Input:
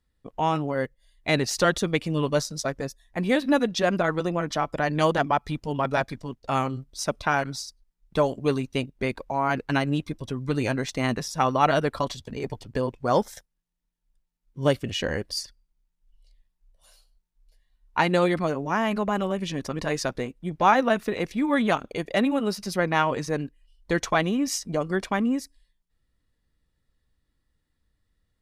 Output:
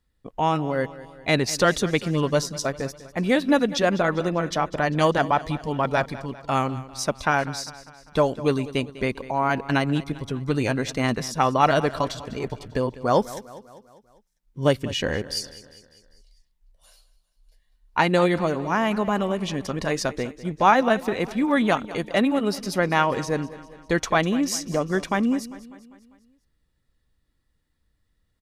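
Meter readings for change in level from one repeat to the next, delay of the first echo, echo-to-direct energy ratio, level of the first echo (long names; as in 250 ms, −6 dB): −5.5 dB, 199 ms, −15.5 dB, −17.0 dB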